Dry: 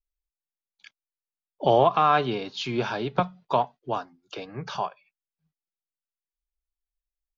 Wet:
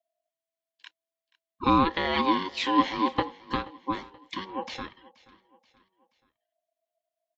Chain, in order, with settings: FFT filter 140 Hz 0 dB, 230 Hz -10 dB, 340 Hz +8 dB, 750 Hz -21 dB, 2.6 kHz +3 dB, 4.3 kHz -4 dB; ring modulator 660 Hz; on a send: feedback delay 479 ms, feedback 46%, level -21 dB; on the sum: trim +5 dB

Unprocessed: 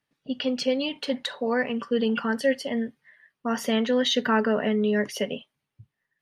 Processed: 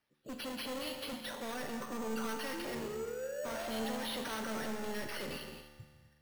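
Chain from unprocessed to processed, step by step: coarse spectral quantiser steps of 30 dB; 1.30–2.20 s: low-pass 1.6 kHz 12 dB/octave; 2.52–4.09 s: painted sound rise 320–940 Hz -35 dBFS; saturation -39 dBFS, distortion -2 dB; feedback comb 74 Hz, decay 1.8 s, harmonics all, mix 80%; gated-style reverb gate 270 ms rising, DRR 7.5 dB; careless resampling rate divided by 6×, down none, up hold; trim +11.5 dB

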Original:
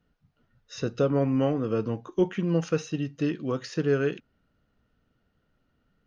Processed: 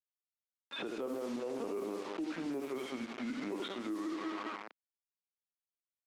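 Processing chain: pitch bend over the whole clip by -7.5 st starting unshifted; band-passed feedback delay 197 ms, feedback 52%, band-pass 1 kHz, level -5 dB; LPC vocoder at 8 kHz pitch kept; delay 75 ms -8.5 dB; low-pass that closes with the level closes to 2.5 kHz, closed at -19.5 dBFS; tremolo 1.1 Hz, depth 66%; word length cut 8-bit, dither none; level-controlled noise filter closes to 2.3 kHz, open at -23 dBFS; compression 4:1, threshold -39 dBFS, peak gain reduction 16.5 dB; high-pass 250 Hz 24 dB/octave; peak limiter -41 dBFS, peak gain reduction 10 dB; trim +10 dB; Opus 48 kbps 48 kHz

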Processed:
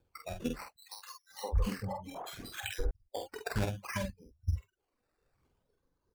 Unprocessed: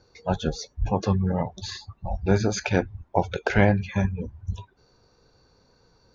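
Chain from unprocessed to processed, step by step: reverb removal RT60 0.78 s; low-pass 5.5 kHz 24 dB/octave; spectral noise reduction 19 dB; harmonic-percussive split percussive +5 dB; compression 12:1, threshold -32 dBFS, peak gain reduction 21.5 dB; rotary cabinet horn 0.7 Hz; phaser 1.1 Hz, delay 4.1 ms, feedback 56%; decimation with a swept rate 11×, swing 60% 0.63 Hz; doubling 47 ms -5 dB; 0.76–2.91 s: three bands offset in time highs, mids, lows 520/750 ms, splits 400/1200 Hz; loudspeaker Doppler distortion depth 0.19 ms

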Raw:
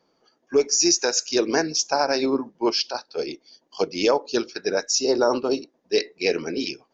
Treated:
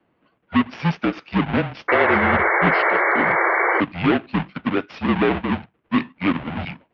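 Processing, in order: square wave that keeps the level; mistuned SSB -180 Hz 320–3200 Hz; painted sound noise, 1.88–3.81 s, 320–2300 Hz -17 dBFS; trim -1.5 dB

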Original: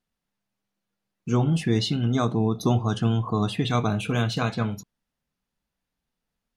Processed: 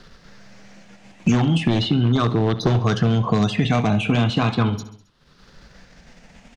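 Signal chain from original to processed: drifting ripple filter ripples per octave 0.59, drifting +0.37 Hz, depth 7 dB; treble shelf 3 kHz +5 dB; in parallel at +2 dB: level held to a coarse grid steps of 9 dB; on the sum: wavefolder -11 dBFS; distance through air 130 m; on a send: feedback delay 67 ms, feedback 50%, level -18 dB; on the sum: three bands compressed up and down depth 100%

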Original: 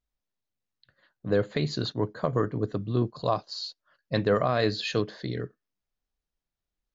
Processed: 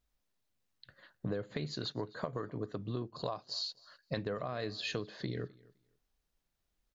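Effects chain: 1.74–4.17 s: bass shelf 360 Hz -6 dB; compression 12:1, threshold -39 dBFS, peak gain reduction 20.5 dB; feedback delay 257 ms, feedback 17%, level -23.5 dB; trim +5 dB

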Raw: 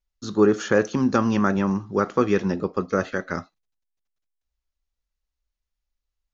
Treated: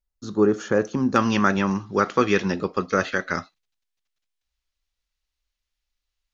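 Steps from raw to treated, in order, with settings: peaking EQ 3.3 kHz -5 dB 2.6 oct, from 1.16 s +10 dB; trim -1 dB

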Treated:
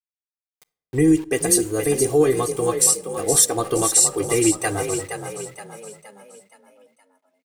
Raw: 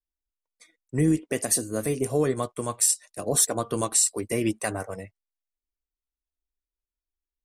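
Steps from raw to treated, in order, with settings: band-stop 1.4 kHz, Q 11; comb 2.5 ms, depth 86%; small samples zeroed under -41 dBFS; frequency-shifting echo 470 ms, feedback 45%, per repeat +33 Hz, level -8 dB; on a send at -17.5 dB: reverberation RT60 0.75 s, pre-delay 6 ms; on the sum: trim +3 dB

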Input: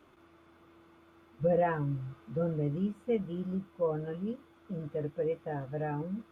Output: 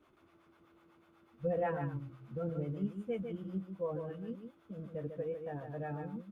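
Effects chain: harmonic tremolo 8.1 Hz, depth 70%, crossover 520 Hz; delay 149 ms -7 dB; trim -3 dB

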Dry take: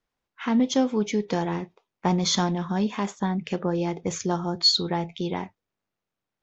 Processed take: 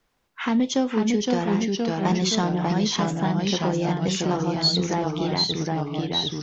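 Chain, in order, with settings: ever faster or slower copies 470 ms, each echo -1 st, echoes 3; three bands compressed up and down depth 40%

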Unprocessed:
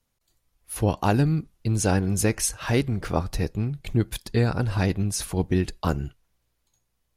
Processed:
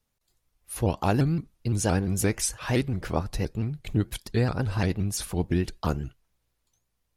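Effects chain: vibrato with a chosen wave saw up 5.8 Hz, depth 160 cents; trim -2.5 dB

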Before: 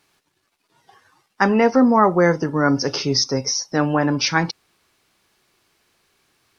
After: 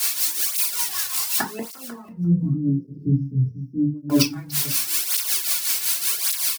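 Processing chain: zero-crossing glitches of -19 dBFS; 2.05–4.10 s: inverse Chebyshev low-pass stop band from 740 Hz, stop band 60 dB; inverted gate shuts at -10 dBFS, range -30 dB; tremolo triangle 5.3 Hz, depth 80%; delay 492 ms -15.5 dB; reverberation RT60 0.25 s, pre-delay 3 ms, DRR 0 dB; cancelling through-zero flanger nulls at 0.87 Hz, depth 3.6 ms; trim +7.5 dB

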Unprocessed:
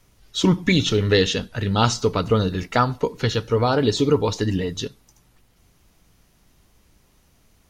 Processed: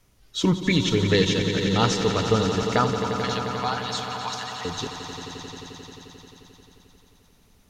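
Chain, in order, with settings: 2.96–4.65 s: Chebyshev high-pass 710 Hz, order 6; on a send: echo with a slow build-up 88 ms, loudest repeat 5, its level -11 dB; on the sum: trim -3.5 dB

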